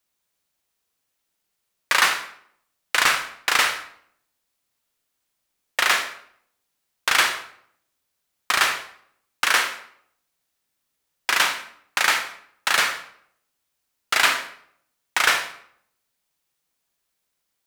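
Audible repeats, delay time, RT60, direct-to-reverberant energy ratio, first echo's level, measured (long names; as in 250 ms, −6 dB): no echo audible, no echo audible, 0.65 s, 6.5 dB, no echo audible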